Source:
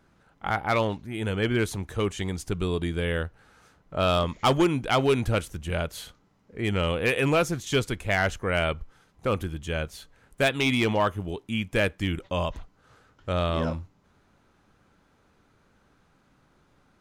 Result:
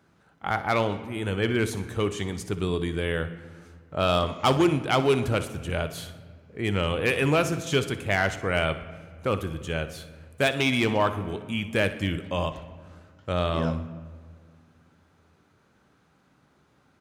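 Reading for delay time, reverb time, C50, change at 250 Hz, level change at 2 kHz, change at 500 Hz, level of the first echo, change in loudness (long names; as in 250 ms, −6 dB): 61 ms, 1.8 s, 11.0 dB, +0.5 dB, +0.5 dB, +0.5 dB, −15.0 dB, +0.5 dB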